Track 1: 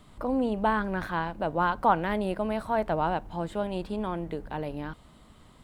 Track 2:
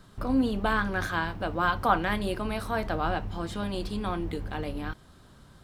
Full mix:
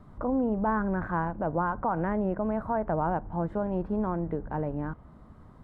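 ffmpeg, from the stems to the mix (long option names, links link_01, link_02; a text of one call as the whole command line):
ffmpeg -i stem1.wav -i stem2.wav -filter_complex "[0:a]lowpass=frequency=1600:width=0.5412,lowpass=frequency=1600:width=1.3066,equalizer=frequency=100:width=0.54:gain=5,volume=1dB,asplit=2[link_01][link_02];[1:a]acompressor=threshold=-37dB:ratio=6,asoftclip=type=tanh:threshold=-35.5dB,volume=-17.5dB[link_03];[link_02]apad=whole_len=248424[link_04];[link_03][link_04]sidechaincompress=threshold=-30dB:ratio=8:attack=16:release=1370[link_05];[link_01][link_05]amix=inputs=2:normalize=0,alimiter=limit=-19dB:level=0:latency=1:release=91" out.wav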